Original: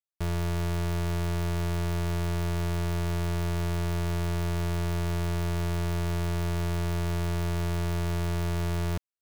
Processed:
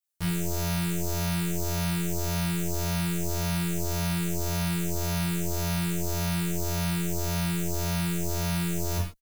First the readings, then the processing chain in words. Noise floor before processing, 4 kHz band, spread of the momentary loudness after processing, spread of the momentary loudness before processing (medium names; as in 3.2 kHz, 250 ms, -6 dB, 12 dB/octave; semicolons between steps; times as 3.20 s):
-29 dBFS, +5.5 dB, 1 LU, 0 LU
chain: treble shelf 4.8 kHz +11.5 dB; gated-style reverb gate 160 ms falling, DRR -3.5 dB; endless flanger 11.4 ms +1.8 Hz